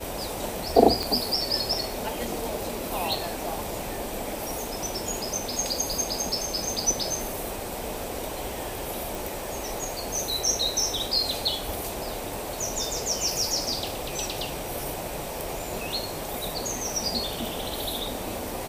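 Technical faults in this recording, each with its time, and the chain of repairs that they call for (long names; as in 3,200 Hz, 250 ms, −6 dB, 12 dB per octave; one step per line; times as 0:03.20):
0:01.03: click
0:09.15: click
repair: click removal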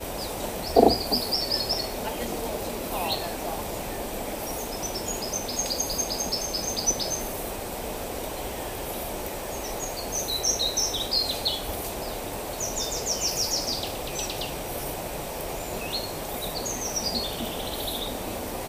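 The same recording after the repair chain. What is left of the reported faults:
0:01.03: click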